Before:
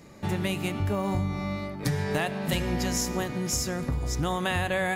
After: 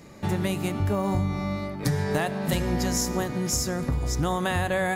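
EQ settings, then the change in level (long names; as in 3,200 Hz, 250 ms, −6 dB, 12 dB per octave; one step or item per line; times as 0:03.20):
dynamic equaliser 2,700 Hz, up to −6 dB, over −46 dBFS, Q 1.5
+2.5 dB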